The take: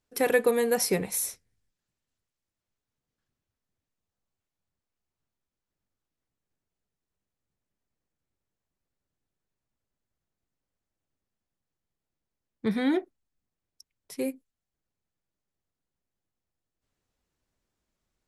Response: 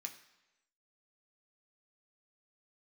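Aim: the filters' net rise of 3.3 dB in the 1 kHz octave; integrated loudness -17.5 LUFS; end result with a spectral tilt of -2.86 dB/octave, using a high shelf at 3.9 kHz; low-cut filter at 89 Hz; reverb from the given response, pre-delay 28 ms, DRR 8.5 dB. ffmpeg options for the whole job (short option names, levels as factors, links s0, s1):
-filter_complex "[0:a]highpass=89,equalizer=f=1000:t=o:g=4.5,highshelf=f=3900:g=6,asplit=2[s0][s1];[1:a]atrim=start_sample=2205,adelay=28[s2];[s1][s2]afir=irnorm=-1:irlink=0,volume=0.562[s3];[s0][s3]amix=inputs=2:normalize=0,volume=2.24"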